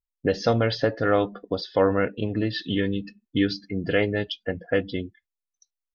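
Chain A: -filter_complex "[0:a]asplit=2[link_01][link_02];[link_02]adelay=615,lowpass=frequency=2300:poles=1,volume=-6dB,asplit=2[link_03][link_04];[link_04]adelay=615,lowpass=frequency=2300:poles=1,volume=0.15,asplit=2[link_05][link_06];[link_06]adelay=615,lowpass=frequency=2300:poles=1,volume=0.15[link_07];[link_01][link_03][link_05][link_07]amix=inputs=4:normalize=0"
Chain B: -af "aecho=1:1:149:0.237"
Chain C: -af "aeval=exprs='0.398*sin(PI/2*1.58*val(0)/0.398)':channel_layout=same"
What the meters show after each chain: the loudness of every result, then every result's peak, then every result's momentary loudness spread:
−25.0, −25.5, −19.0 LKFS; −8.0, −8.5, −8.0 dBFS; 10, 8, 8 LU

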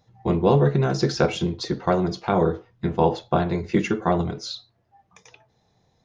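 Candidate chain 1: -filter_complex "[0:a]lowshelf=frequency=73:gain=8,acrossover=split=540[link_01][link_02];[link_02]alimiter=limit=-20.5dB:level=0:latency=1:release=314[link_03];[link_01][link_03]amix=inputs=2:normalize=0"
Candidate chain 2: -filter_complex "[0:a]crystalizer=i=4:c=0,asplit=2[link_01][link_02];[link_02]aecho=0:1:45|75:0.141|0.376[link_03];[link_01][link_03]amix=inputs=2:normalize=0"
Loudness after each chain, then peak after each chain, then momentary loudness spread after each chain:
−23.5, −21.0 LKFS; −6.5, −3.0 dBFS; 10, 7 LU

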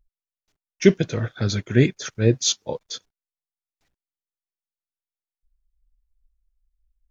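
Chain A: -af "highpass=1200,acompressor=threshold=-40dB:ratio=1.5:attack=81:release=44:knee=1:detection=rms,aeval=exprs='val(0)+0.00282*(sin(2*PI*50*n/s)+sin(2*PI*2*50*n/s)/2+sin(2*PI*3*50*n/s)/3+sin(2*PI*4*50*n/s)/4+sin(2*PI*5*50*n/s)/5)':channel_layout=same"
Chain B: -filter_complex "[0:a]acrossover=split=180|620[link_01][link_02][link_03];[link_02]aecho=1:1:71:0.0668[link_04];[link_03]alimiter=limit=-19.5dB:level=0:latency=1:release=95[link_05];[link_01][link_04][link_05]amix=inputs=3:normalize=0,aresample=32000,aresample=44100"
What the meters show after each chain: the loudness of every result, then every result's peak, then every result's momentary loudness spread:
−33.5, −22.5 LKFS; −15.0, −2.0 dBFS; 9, 13 LU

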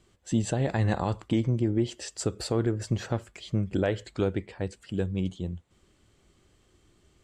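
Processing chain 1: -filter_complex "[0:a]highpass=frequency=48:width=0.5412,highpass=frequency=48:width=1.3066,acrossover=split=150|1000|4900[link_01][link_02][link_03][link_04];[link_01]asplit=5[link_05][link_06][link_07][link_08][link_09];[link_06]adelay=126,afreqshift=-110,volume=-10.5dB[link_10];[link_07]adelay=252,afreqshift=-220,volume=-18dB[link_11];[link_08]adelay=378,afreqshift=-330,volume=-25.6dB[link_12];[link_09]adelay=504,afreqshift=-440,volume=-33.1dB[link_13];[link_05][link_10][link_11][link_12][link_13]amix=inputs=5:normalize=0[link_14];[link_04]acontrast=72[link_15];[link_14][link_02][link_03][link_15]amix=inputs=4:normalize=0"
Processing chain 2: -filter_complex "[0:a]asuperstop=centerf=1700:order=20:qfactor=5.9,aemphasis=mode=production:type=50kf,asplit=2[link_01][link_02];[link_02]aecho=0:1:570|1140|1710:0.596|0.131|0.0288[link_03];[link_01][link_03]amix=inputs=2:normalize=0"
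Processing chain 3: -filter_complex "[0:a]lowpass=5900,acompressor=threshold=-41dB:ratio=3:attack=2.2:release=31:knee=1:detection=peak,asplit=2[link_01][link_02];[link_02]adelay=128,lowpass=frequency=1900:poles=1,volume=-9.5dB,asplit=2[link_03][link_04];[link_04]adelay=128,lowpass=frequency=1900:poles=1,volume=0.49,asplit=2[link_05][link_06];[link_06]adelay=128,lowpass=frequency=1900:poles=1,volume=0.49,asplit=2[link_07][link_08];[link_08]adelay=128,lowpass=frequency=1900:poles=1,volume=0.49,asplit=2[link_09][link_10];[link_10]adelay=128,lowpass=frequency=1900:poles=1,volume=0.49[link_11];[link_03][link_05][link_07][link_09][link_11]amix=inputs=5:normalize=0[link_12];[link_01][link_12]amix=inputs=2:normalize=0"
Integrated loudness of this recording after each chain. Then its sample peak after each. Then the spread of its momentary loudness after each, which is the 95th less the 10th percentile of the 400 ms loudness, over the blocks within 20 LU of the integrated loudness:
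−29.5, −28.0, −41.0 LKFS; −12.5, −10.5, −26.5 dBFS; 7, 8, 6 LU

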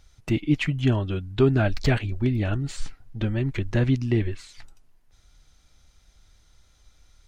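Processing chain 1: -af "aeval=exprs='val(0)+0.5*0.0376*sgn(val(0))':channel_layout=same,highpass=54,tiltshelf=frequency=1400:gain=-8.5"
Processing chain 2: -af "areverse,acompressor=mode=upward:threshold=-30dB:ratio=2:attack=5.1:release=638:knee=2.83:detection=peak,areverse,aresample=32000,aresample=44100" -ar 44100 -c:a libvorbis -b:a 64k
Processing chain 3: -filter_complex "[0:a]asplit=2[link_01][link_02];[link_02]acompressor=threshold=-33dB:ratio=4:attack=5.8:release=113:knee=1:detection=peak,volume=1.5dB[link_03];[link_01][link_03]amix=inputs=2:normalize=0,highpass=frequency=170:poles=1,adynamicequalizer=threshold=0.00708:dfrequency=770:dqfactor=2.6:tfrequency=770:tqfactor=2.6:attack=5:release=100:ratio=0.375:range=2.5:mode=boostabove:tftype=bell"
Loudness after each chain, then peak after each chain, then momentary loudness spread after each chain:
−28.0, −25.0, −24.5 LKFS; −7.5, −9.0, −7.5 dBFS; 7, 12, 11 LU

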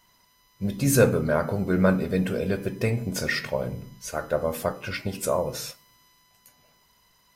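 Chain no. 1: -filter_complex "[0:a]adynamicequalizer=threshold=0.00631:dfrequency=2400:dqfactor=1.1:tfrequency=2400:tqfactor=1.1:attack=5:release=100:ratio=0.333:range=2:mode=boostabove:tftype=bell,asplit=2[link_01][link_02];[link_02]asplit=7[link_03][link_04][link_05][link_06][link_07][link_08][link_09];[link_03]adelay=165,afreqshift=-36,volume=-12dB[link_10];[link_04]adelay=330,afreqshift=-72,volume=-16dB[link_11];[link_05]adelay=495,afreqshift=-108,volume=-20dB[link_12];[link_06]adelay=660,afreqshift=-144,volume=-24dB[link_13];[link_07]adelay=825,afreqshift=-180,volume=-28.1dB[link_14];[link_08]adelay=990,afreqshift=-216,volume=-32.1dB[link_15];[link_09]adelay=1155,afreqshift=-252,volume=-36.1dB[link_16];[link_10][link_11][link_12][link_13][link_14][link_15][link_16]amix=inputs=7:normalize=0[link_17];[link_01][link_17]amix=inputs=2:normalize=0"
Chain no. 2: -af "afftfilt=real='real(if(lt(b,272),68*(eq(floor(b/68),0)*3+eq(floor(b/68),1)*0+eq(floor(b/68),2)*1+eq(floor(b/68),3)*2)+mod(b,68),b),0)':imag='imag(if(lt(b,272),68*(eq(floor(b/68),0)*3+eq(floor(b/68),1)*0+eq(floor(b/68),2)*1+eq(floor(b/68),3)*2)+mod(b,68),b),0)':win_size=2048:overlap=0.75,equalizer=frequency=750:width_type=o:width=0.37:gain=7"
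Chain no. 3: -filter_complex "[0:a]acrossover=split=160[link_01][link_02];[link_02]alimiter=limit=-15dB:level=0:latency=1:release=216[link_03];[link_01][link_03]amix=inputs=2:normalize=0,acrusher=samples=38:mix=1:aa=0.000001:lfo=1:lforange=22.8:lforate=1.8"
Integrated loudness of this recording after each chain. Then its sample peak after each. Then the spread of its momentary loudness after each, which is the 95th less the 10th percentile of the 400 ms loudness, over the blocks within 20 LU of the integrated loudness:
−25.0, −23.0, −27.5 LKFS; −5.5, −5.0, −11.5 dBFS; 13, 13, 10 LU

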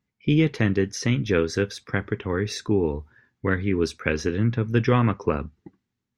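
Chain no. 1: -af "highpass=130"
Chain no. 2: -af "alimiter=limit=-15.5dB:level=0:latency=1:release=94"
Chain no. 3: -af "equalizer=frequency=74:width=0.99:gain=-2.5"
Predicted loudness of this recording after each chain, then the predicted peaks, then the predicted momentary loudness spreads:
−25.0, −28.0, −24.5 LKFS; −6.0, −15.5, −5.5 dBFS; 7, 7, 7 LU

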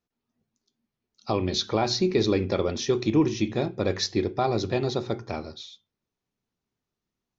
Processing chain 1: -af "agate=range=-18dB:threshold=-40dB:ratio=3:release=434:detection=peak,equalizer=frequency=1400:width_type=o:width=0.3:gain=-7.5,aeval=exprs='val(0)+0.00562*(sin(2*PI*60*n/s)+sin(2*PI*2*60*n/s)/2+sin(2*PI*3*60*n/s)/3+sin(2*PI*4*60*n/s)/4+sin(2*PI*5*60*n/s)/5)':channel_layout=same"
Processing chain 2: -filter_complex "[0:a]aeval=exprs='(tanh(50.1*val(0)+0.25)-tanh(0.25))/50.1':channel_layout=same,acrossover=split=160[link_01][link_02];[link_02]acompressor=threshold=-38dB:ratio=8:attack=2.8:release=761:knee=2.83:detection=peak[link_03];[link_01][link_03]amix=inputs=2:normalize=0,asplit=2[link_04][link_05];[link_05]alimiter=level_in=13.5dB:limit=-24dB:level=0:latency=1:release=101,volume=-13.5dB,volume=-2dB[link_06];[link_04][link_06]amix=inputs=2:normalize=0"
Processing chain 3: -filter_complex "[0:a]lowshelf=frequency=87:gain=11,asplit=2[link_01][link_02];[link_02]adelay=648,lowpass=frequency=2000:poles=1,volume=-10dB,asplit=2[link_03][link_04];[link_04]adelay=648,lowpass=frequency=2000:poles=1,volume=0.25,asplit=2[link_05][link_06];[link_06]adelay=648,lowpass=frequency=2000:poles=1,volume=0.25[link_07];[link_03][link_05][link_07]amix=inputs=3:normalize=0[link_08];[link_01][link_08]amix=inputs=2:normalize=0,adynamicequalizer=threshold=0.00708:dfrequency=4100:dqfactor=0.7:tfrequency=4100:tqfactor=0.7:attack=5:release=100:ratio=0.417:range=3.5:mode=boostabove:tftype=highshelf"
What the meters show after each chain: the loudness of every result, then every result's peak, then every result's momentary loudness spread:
−26.0, −39.0, −24.0 LKFS; −11.0, −27.0, −8.0 dBFS; 12, 3, 15 LU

